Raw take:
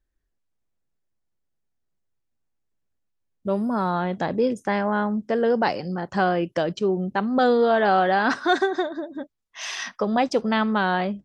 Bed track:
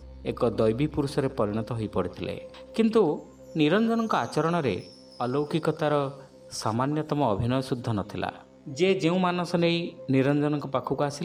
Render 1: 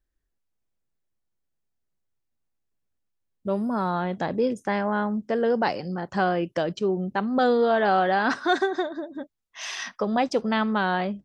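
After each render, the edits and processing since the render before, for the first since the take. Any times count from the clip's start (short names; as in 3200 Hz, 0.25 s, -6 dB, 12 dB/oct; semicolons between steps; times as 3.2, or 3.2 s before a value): gain -2 dB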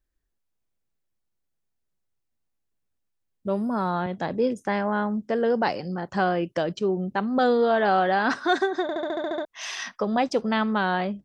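4.06–4.58 three-band expander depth 40%; 8.82 stutter in place 0.07 s, 9 plays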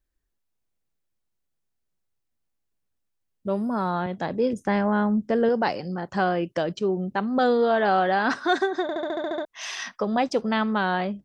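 4.53–5.49 low shelf 240 Hz +8.5 dB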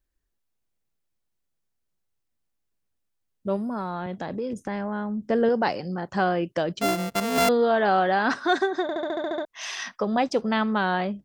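3.56–5.26 compressor, threshold -26 dBFS; 6.81–7.49 sample sorter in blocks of 64 samples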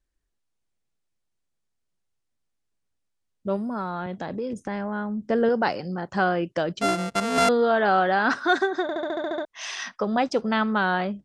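dynamic EQ 1400 Hz, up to +5 dB, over -43 dBFS, Q 4.8; LPF 10000 Hz 24 dB/oct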